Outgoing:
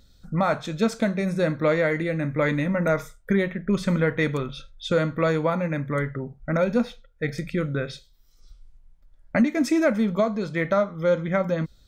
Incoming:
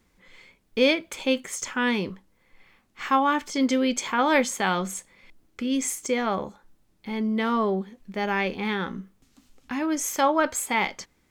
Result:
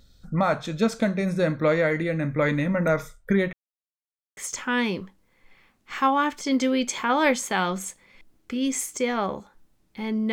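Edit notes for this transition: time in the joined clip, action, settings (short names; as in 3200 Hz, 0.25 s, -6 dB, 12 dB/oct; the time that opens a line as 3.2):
outgoing
3.53–4.37 mute
4.37 switch to incoming from 1.46 s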